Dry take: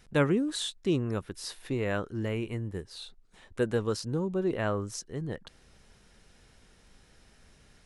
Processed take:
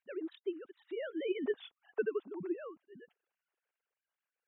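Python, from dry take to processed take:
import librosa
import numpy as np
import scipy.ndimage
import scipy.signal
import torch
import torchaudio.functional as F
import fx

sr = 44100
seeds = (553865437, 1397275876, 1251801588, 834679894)

y = fx.sine_speech(x, sr)
y = fx.doppler_pass(y, sr, speed_mps=19, closest_m=3.7, pass_at_s=2.67)
y = fx.stretch_vocoder(y, sr, factor=0.57)
y = y * librosa.db_to_amplitude(8.0)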